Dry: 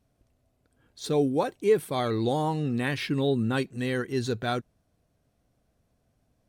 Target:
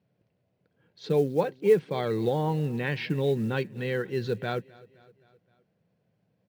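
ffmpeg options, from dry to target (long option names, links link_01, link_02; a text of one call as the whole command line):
ffmpeg -i in.wav -af "highpass=frequency=110:width=0.5412,highpass=frequency=110:width=1.3066,equalizer=frequency=180:width_type=q:width=4:gain=8,equalizer=frequency=260:width_type=q:width=4:gain=-9,equalizer=frequency=490:width_type=q:width=4:gain=4,equalizer=frequency=690:width_type=q:width=4:gain=-5,equalizer=frequency=1200:width_type=q:width=4:gain=-7,equalizer=frequency=3600:width_type=q:width=4:gain=-5,lowpass=frequency=4200:width=0.5412,lowpass=frequency=4200:width=1.3066,acrusher=bits=8:mode=log:mix=0:aa=0.000001,aecho=1:1:260|520|780|1040:0.0708|0.0396|0.0222|0.0124" out.wav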